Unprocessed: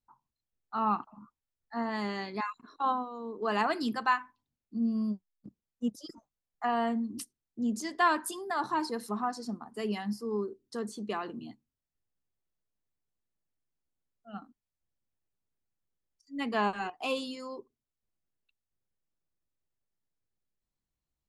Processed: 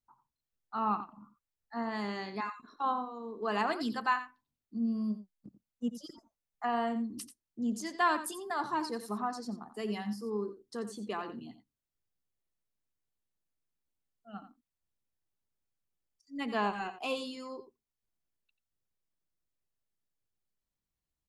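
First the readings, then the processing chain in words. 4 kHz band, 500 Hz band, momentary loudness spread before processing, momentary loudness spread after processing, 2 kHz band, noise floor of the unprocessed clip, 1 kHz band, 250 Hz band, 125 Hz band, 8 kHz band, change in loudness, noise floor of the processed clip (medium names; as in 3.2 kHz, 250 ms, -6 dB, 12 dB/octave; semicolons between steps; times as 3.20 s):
-2.0 dB, -2.0 dB, 14 LU, 15 LU, -2.5 dB, under -85 dBFS, -2.5 dB, -2.5 dB, -2.0 dB, -2.0 dB, -2.5 dB, under -85 dBFS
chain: delay 88 ms -12 dB; trim -2.5 dB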